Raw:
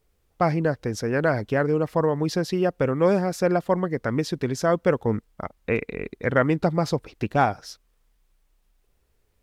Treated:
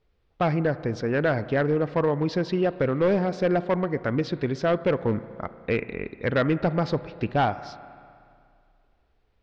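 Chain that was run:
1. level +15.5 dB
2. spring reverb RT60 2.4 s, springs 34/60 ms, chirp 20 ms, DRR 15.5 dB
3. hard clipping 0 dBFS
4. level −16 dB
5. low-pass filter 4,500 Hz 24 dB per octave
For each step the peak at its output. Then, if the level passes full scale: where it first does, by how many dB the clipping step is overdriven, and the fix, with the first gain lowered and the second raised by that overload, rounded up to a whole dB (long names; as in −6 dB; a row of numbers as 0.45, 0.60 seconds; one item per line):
+8.5, +8.5, 0.0, −16.0, −14.5 dBFS
step 1, 8.5 dB
step 1 +6.5 dB, step 4 −7 dB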